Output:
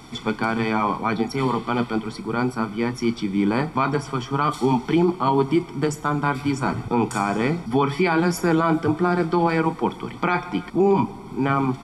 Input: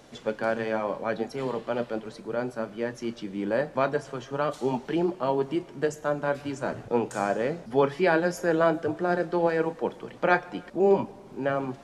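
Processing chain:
notch filter 6,500 Hz, Q 7.8
comb filter 0.9 ms, depth 86%
brickwall limiter −18 dBFS, peak gain reduction 10.5 dB
level +8 dB

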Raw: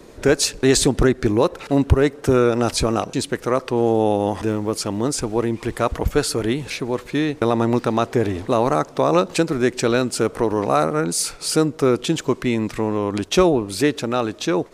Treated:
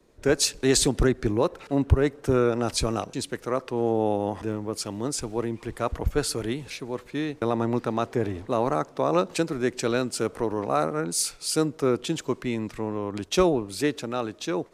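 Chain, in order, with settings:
multiband upward and downward expander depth 40%
level −6.5 dB

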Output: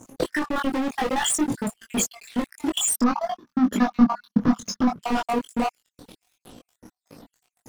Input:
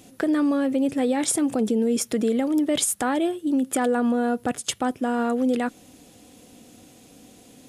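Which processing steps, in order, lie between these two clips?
time-frequency cells dropped at random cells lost 70%
high-shelf EQ 10,000 Hz −4 dB
leveller curve on the samples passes 5
output level in coarse steps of 23 dB
0:02.93–0:04.99: drawn EQ curve 140 Hz 0 dB, 210 Hz +14 dB, 350 Hz −4 dB, 750 Hz −2 dB, 1,200 Hz +6 dB, 2,600 Hz −8 dB, 5,800 Hz 0 dB, 8,300 Hz −25 dB, 12,000 Hz −13 dB
multi-voice chorus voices 6, 0.52 Hz, delay 21 ms, depth 4.9 ms
level +3.5 dB

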